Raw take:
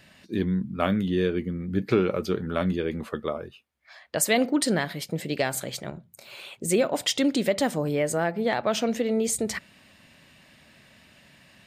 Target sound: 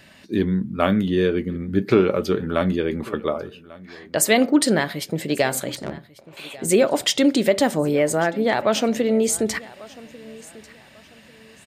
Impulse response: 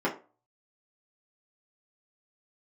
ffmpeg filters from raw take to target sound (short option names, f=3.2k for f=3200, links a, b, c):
-filter_complex "[0:a]asettb=1/sr,asplit=3[a][b][c];[a]atrim=end=5.754[d];[b]atrim=start=5.75:end=6.37,asetpts=PTS-STARTPTS,afade=t=in:d=0.004:c=qsin,afade=t=out:st=0.616:d=0.004:c=qsin,adynamicsmooth=sensitivity=5:basefreq=550[e];[c]atrim=start=6.366[f];[d][e]acrossfade=d=0.004:c1=hsin:c2=qsin[g];[g][f]acrossfade=d=0.004:c1=qsin:c2=hsin,aecho=1:1:1143|2286:0.0891|0.025,asplit=2[h][i];[1:a]atrim=start_sample=2205[j];[i][j]afir=irnorm=-1:irlink=0,volume=-25dB[k];[h][k]amix=inputs=2:normalize=0,volume=4.5dB"